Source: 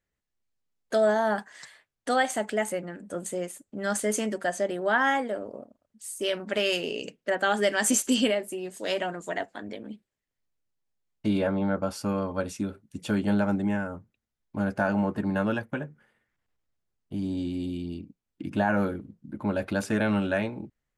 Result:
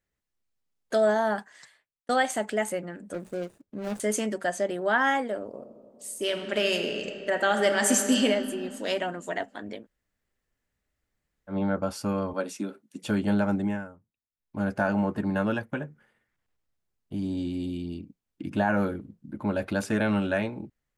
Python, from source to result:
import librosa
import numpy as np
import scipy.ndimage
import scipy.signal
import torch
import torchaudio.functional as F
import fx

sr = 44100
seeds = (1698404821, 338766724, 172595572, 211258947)

y = fx.median_filter(x, sr, points=41, at=(3.13, 4.0))
y = fx.reverb_throw(y, sr, start_s=5.48, length_s=2.75, rt60_s=2.7, drr_db=6.0)
y = fx.highpass(y, sr, hz=210.0, slope=24, at=(12.33, 13.04))
y = fx.edit(y, sr, fx.fade_out_span(start_s=1.22, length_s=0.87),
    fx.room_tone_fill(start_s=9.82, length_s=1.7, crossfade_s=0.1),
    fx.fade_down_up(start_s=13.63, length_s=1.02, db=-16.0, fade_s=0.32), tone=tone)